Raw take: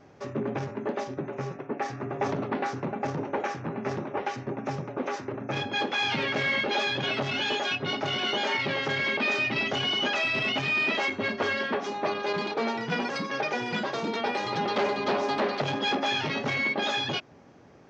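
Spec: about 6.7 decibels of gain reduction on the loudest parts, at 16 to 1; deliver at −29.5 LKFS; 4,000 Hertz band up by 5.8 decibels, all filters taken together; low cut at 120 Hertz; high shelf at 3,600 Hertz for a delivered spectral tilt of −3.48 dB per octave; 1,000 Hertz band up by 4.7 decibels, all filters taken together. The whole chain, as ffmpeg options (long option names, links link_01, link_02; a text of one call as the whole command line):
ffmpeg -i in.wav -af "highpass=120,equalizer=frequency=1000:width_type=o:gain=5.5,highshelf=frequency=3600:gain=5,equalizer=frequency=4000:width_type=o:gain=4.5,acompressor=threshold=-26dB:ratio=16" out.wav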